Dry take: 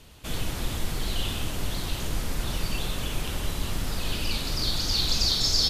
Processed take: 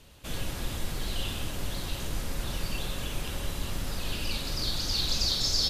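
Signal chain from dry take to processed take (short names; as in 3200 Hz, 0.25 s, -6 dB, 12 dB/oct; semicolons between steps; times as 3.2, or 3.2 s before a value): resonator 550 Hz, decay 0.29 s, harmonics odd, mix 70%; gain +6.5 dB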